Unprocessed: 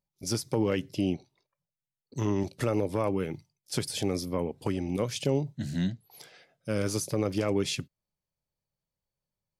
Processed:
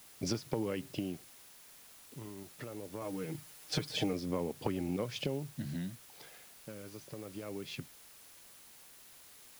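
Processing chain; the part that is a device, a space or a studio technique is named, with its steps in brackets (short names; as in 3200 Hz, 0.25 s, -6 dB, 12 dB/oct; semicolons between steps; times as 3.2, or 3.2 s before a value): medium wave at night (BPF 100–3700 Hz; compressor 5:1, threshold -40 dBFS, peak gain reduction 16 dB; tremolo 0.22 Hz, depth 78%; whine 10000 Hz -72 dBFS; white noise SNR 16 dB); 3.01–4.13 comb 6.5 ms, depth 73%; gain +7.5 dB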